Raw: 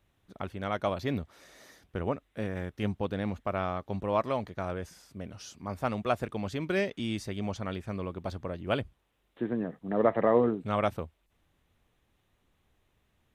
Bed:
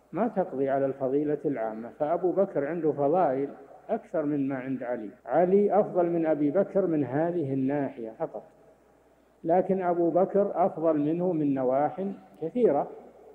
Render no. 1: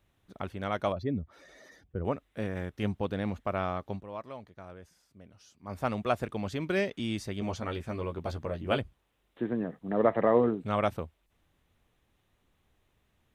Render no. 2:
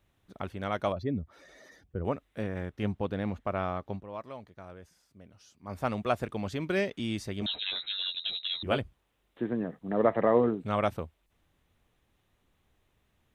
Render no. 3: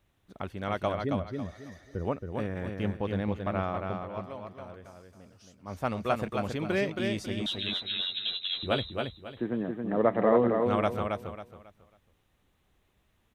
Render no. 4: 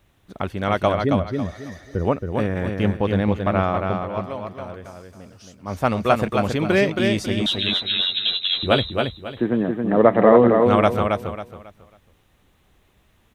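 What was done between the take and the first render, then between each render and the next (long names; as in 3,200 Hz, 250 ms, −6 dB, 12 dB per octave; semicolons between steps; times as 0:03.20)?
0:00.92–0:02.05: expanding power law on the bin magnitudes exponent 1.7; 0:03.89–0:05.76: duck −12.5 dB, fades 0.14 s; 0:07.40–0:08.78: double-tracking delay 13 ms −4 dB
0:02.42–0:04.14: high-shelf EQ 4,400 Hz −7 dB; 0:07.46–0:08.63: voice inversion scrambler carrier 3,900 Hz
repeating echo 273 ms, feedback 29%, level −4.5 dB
level +10.5 dB; brickwall limiter −1 dBFS, peak gain reduction 1 dB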